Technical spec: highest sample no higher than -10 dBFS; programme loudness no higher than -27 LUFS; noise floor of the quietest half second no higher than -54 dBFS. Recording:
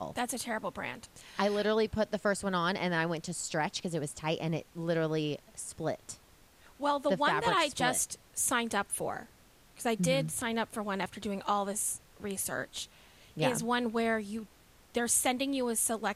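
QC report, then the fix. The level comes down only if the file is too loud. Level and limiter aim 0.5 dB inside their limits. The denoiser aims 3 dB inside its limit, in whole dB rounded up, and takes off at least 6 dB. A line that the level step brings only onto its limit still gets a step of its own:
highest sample -14.5 dBFS: OK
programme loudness -32.0 LUFS: OK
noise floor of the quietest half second -60 dBFS: OK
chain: none

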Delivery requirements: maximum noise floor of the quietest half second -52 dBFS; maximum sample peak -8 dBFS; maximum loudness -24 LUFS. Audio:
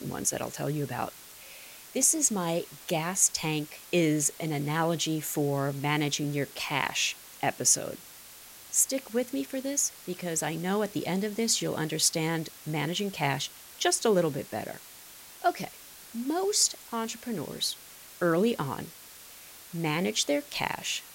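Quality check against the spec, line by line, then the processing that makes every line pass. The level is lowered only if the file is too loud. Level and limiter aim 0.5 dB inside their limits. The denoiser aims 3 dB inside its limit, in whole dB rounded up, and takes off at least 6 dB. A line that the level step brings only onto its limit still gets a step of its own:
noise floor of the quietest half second -49 dBFS: fail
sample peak -9.0 dBFS: OK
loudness -28.5 LUFS: OK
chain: denoiser 6 dB, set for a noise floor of -49 dBFS

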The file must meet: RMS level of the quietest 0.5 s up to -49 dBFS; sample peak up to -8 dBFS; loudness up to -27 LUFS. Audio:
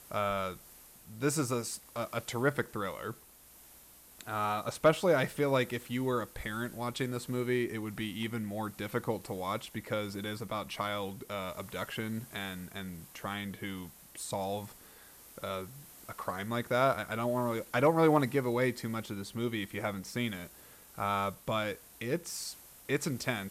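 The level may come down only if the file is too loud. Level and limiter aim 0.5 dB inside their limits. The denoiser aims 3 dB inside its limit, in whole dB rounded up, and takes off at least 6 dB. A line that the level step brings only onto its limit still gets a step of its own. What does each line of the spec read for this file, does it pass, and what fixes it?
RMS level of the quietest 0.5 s -57 dBFS: OK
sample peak -14.0 dBFS: OK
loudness -34.0 LUFS: OK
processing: none

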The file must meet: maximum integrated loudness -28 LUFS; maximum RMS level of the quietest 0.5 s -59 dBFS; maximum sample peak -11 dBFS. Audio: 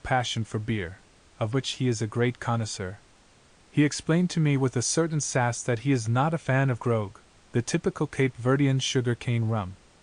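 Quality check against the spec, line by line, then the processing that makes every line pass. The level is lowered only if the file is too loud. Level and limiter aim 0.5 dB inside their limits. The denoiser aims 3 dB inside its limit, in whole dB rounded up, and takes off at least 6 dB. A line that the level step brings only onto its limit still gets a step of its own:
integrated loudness -26.5 LUFS: fail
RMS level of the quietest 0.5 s -57 dBFS: fail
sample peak -10.0 dBFS: fail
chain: denoiser 6 dB, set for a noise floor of -57 dBFS; gain -2 dB

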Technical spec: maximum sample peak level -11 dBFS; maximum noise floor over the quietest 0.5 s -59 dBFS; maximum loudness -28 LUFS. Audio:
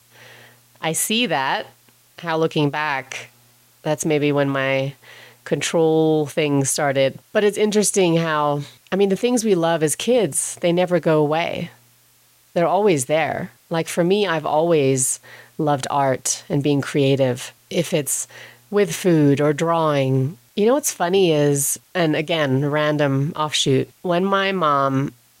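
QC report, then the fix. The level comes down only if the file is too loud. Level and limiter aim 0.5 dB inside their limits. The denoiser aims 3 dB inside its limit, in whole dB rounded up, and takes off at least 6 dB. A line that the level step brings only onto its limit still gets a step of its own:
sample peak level -7.0 dBFS: fail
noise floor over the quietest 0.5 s -56 dBFS: fail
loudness -19.5 LUFS: fail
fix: gain -9 dB

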